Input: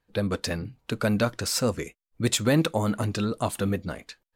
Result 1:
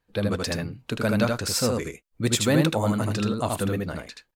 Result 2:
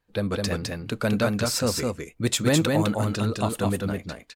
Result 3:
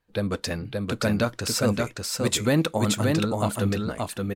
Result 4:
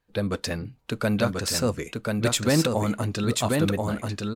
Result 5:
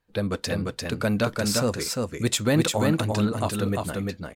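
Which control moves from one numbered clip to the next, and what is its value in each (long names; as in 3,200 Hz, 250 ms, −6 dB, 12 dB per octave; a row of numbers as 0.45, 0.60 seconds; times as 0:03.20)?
single-tap delay, delay time: 78, 208, 575, 1,036, 347 milliseconds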